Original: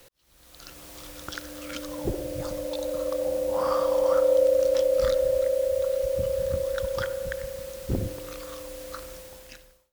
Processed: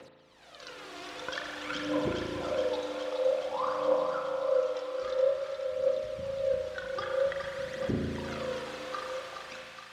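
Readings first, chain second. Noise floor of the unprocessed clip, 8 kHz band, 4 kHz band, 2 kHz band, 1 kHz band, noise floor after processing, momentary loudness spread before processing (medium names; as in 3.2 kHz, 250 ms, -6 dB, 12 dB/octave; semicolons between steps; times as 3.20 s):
-57 dBFS, no reading, -0.5 dB, +2.0 dB, 0.0 dB, -52 dBFS, 19 LU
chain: compression 4:1, threshold -32 dBFS, peak gain reduction 13 dB; phaser 0.51 Hz, delay 2.9 ms, feedback 70%; band-pass 180–3900 Hz; thinning echo 420 ms, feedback 77%, high-pass 1 kHz, level -5 dB; spring tank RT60 2 s, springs 36 ms, chirp 25 ms, DRR 0.5 dB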